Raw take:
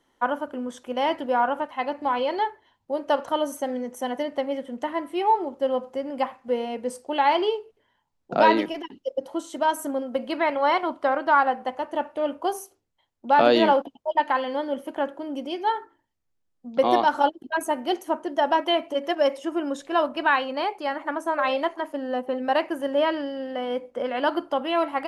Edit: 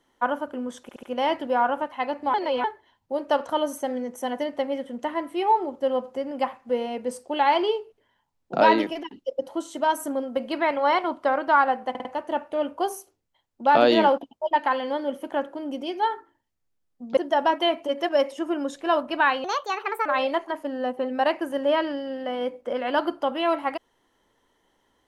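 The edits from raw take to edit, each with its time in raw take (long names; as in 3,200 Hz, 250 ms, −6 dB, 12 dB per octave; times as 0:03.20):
0:00.82: stutter 0.07 s, 4 plays
0:02.13–0:02.43: reverse
0:11.69: stutter 0.05 s, 4 plays
0:16.81–0:18.23: remove
0:20.50–0:21.35: play speed 138%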